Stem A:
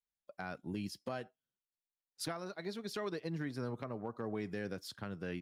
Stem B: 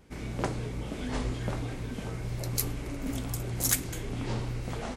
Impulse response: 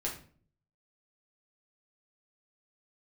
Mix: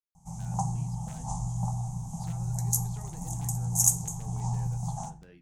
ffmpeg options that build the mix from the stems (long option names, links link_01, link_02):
-filter_complex "[0:a]aeval=exprs='(mod(29.9*val(0)+1,2)-1)/29.9':channel_layout=same,flanger=delay=9.4:depth=8.4:regen=-73:speed=1.5:shape=sinusoidal,volume=-11dB,asplit=2[link_01][link_02];[link_02]volume=-16dB[link_03];[1:a]firequalizer=gain_entry='entry(100,0);entry(160,12);entry(280,-24);entry(480,-24);entry(800,12);entry(1600,-30);entry(4400,-13);entry(6400,13);entry(15000,-3)':delay=0.05:min_phase=1,adelay=150,volume=-6dB,asplit=2[link_04][link_05];[link_05]volume=-8dB[link_06];[2:a]atrim=start_sample=2205[link_07];[link_03][link_06]amix=inputs=2:normalize=0[link_08];[link_08][link_07]afir=irnorm=-1:irlink=0[link_09];[link_01][link_04][link_09]amix=inputs=3:normalize=0"